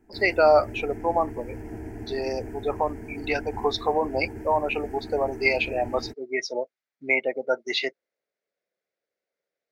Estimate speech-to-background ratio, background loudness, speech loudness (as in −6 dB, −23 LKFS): 13.0 dB, −38.5 LKFS, −25.5 LKFS